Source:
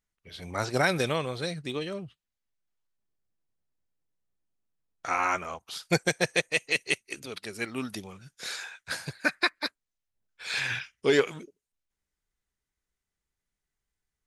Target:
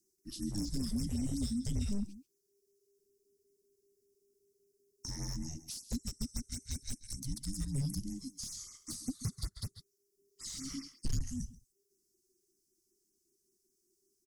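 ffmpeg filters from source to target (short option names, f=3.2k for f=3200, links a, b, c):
-filter_complex "[0:a]firequalizer=gain_entry='entry(210,0);entry(880,-28);entry(3600,-17);entry(5600,8)':delay=0.05:min_phase=1,afreqshift=-400,acompressor=threshold=-35dB:ratio=6,lowshelf=f=68:g=8.5,asplit=2[a][b];[b]adelay=134.1,volume=-17dB,highshelf=f=4k:g=-3.02[c];[a][c]amix=inputs=2:normalize=0,asoftclip=type=hard:threshold=-33.5dB,acrossover=split=360[d][e];[e]acompressor=threshold=-48dB:ratio=6[f];[d][f]amix=inputs=2:normalize=0,afftfilt=real='re*(1-between(b*sr/1024,230*pow(3900/230,0.5+0.5*sin(2*PI*5.2*pts/sr))/1.41,230*pow(3900/230,0.5+0.5*sin(2*PI*5.2*pts/sr))*1.41))':imag='im*(1-between(b*sr/1024,230*pow(3900/230,0.5+0.5*sin(2*PI*5.2*pts/sr))/1.41,230*pow(3900/230,0.5+0.5*sin(2*PI*5.2*pts/sr))*1.41))':win_size=1024:overlap=0.75,volume=5.5dB"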